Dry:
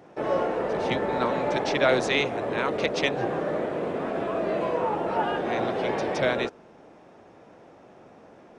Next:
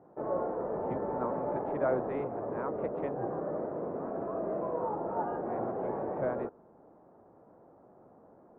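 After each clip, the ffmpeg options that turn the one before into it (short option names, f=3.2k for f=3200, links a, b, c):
-af "lowpass=f=1.2k:w=0.5412,lowpass=f=1.2k:w=1.3066,volume=-7dB"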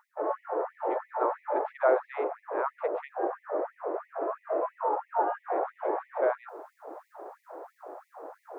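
-af "lowshelf=f=450:g=-6.5,areverse,acompressor=mode=upward:threshold=-39dB:ratio=2.5,areverse,afftfilt=real='re*gte(b*sr/1024,260*pow(1900/260,0.5+0.5*sin(2*PI*3*pts/sr)))':imag='im*gte(b*sr/1024,260*pow(1900/260,0.5+0.5*sin(2*PI*3*pts/sr)))':win_size=1024:overlap=0.75,volume=9dB"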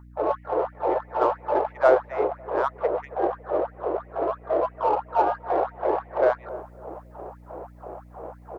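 -filter_complex "[0:a]aeval=exprs='val(0)+0.00251*(sin(2*PI*60*n/s)+sin(2*PI*2*60*n/s)/2+sin(2*PI*3*60*n/s)/3+sin(2*PI*4*60*n/s)/4+sin(2*PI*5*60*n/s)/5)':c=same,asplit=2[a][b];[b]adynamicsmooth=sensitivity=3:basefreq=1.2k,volume=0.5dB[c];[a][c]amix=inputs=2:normalize=0,asplit=2[d][e];[e]adelay=277,lowpass=f=810:p=1,volume=-15.5dB,asplit=2[f][g];[g]adelay=277,lowpass=f=810:p=1,volume=0.35,asplit=2[h][i];[i]adelay=277,lowpass=f=810:p=1,volume=0.35[j];[d][f][h][j]amix=inputs=4:normalize=0"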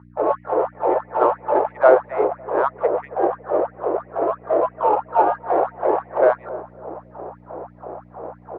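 -af "highpass=110,lowpass=2.1k,volume=5dB"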